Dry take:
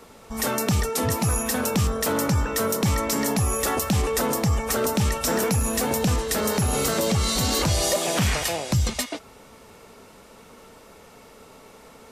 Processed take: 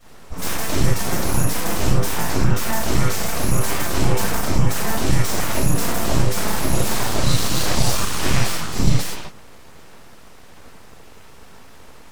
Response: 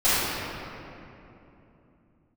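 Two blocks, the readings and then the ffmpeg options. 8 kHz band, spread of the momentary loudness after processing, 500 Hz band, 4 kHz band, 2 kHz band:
+1.0 dB, 3 LU, -1.5 dB, +2.0 dB, +3.0 dB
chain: -filter_complex "[1:a]atrim=start_sample=2205,atrim=end_sample=6174[a];[0:a][a]afir=irnorm=-1:irlink=0,aeval=exprs='abs(val(0))':c=same,bass=f=250:g=5,treble=f=4k:g=1,volume=-12.5dB"

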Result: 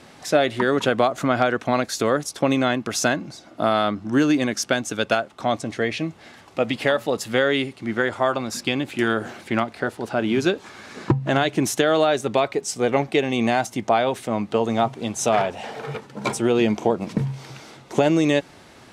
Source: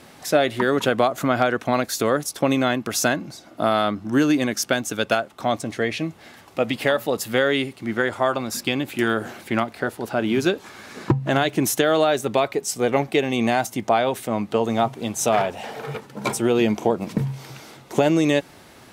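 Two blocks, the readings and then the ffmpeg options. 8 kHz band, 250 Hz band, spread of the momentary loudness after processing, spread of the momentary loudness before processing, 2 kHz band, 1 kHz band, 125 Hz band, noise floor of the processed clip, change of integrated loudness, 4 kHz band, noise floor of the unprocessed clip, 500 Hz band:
-1.5 dB, 0.0 dB, 9 LU, 8 LU, 0.0 dB, 0.0 dB, 0.0 dB, -48 dBFS, 0.0 dB, 0.0 dB, -48 dBFS, 0.0 dB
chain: -af "lowpass=8.7k"

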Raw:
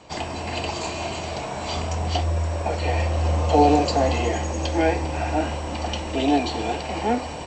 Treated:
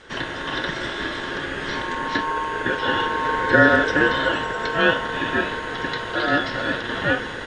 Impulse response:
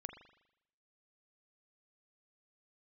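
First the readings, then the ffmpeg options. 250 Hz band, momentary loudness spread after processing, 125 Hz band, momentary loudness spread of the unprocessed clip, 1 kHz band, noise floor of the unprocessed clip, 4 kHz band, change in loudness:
-1.0 dB, 11 LU, -8.5 dB, 10 LU, +0.5 dB, -32 dBFS, +3.5 dB, +2.0 dB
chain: -filter_complex "[0:a]acrossover=split=4000[a][b];[b]acompressor=threshold=-49dB:ratio=4:attack=1:release=60[c];[a][c]amix=inputs=2:normalize=0,equalizer=f=250:t=o:w=1:g=-7,equalizer=f=500:t=o:w=1:g=9,equalizer=f=2k:t=o:w=1:g=11,aeval=exprs='val(0)*sin(2*PI*1000*n/s)':c=same"

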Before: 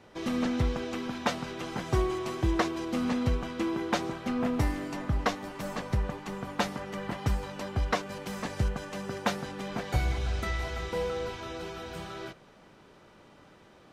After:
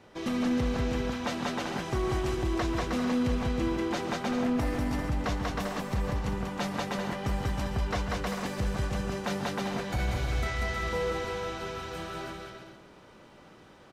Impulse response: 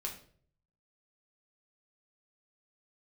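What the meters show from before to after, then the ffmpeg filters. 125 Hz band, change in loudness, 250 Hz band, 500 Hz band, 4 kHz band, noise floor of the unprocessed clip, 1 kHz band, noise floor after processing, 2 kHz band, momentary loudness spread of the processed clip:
+0.5 dB, +1.0 dB, +1.5 dB, +1.0 dB, +1.0 dB, -56 dBFS, +0.5 dB, -54 dBFS, +1.0 dB, 6 LU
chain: -filter_complex "[0:a]asplit=2[a][b];[b]aecho=0:1:190|313.5|393.8|446|479.9:0.631|0.398|0.251|0.158|0.1[c];[a][c]amix=inputs=2:normalize=0,alimiter=limit=-21dB:level=0:latency=1:release=27,asplit=2[d][e];[e]aecho=0:1:138:0.2[f];[d][f]amix=inputs=2:normalize=0"

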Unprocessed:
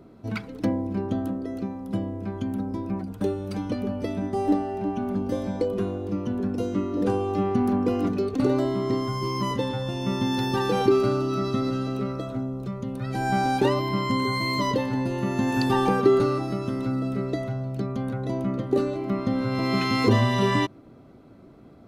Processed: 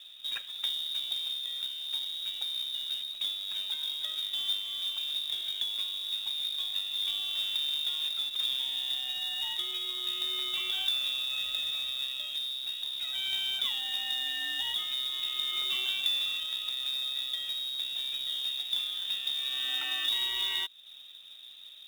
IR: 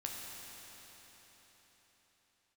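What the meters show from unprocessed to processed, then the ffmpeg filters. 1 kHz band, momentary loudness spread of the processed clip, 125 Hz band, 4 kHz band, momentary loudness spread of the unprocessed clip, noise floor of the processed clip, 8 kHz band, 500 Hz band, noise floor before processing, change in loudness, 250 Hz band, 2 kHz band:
-22.5 dB, 5 LU, under -40 dB, +11.5 dB, 9 LU, -49 dBFS, 0.0 dB, -34.0 dB, -49 dBFS, -4.5 dB, under -35 dB, -6.0 dB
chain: -af "lowpass=f=3.3k:t=q:w=0.5098,lowpass=f=3.3k:t=q:w=0.6013,lowpass=f=3.3k:t=q:w=0.9,lowpass=f=3.3k:t=q:w=2.563,afreqshift=-3900,acompressor=threshold=-37dB:ratio=2,acrusher=bits=3:mode=log:mix=0:aa=0.000001"

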